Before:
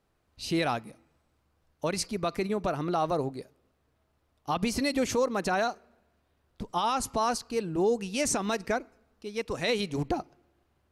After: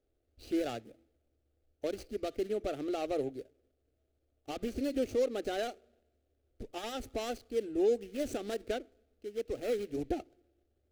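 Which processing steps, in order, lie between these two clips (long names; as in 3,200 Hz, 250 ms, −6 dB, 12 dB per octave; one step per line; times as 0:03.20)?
running median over 25 samples
phaser with its sweep stopped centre 410 Hz, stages 4
level −1.5 dB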